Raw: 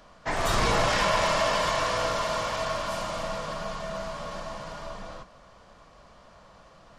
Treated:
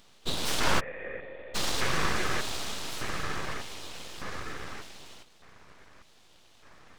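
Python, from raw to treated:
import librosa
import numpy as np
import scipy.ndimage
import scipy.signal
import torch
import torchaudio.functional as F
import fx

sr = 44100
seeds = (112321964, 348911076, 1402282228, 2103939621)

y = fx.filter_lfo_highpass(x, sr, shape='square', hz=0.83, low_hz=380.0, high_hz=1900.0, q=2.5)
y = np.abs(y)
y = fx.formant_cascade(y, sr, vowel='e', at=(0.79, 1.54), fade=0.02)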